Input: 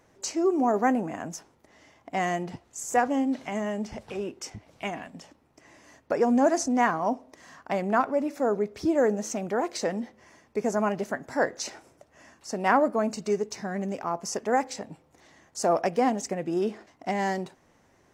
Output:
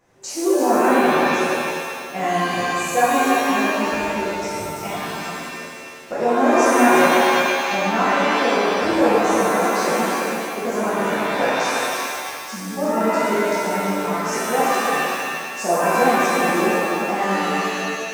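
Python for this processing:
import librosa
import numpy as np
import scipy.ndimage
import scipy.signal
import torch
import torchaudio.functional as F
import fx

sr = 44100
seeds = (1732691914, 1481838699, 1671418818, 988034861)

p1 = fx.spec_repair(x, sr, seeds[0], start_s=12.53, length_s=0.22, low_hz=240.0, high_hz=3100.0, source='before')
p2 = p1 + fx.echo_single(p1, sr, ms=341, db=-6.5, dry=0)
p3 = fx.rev_shimmer(p2, sr, seeds[1], rt60_s=1.7, semitones=7, shimmer_db=-2, drr_db=-9.0)
y = F.gain(torch.from_numpy(p3), -4.5).numpy()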